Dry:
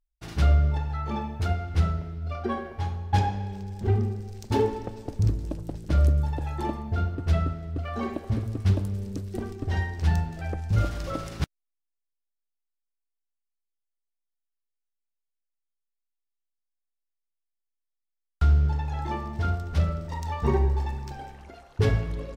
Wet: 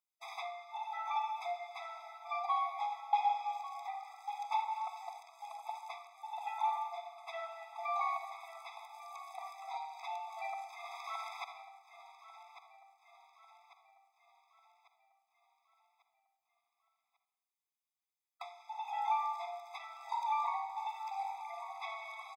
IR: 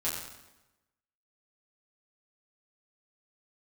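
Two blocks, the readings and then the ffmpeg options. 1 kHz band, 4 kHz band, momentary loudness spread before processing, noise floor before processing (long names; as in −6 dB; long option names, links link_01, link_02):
0.0 dB, −7.5 dB, 11 LU, −83 dBFS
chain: -filter_complex "[0:a]acrossover=split=3600[link_01][link_02];[link_02]acompressor=threshold=-60dB:ratio=4:attack=1:release=60[link_03];[link_01][link_03]amix=inputs=2:normalize=0,aecho=1:1:1145|2290|3435|4580|5725:0.168|0.0839|0.042|0.021|0.0105,asplit=2[link_04][link_05];[1:a]atrim=start_sample=2205,adelay=46[link_06];[link_05][link_06]afir=irnorm=-1:irlink=0,volume=-13.5dB[link_07];[link_04][link_07]amix=inputs=2:normalize=0,acompressor=threshold=-25dB:ratio=3,afftfilt=real='re*eq(mod(floor(b*sr/1024/660),2),1)':imag='im*eq(mod(floor(b*sr/1024/660),2),1)':win_size=1024:overlap=0.75,volume=2.5dB"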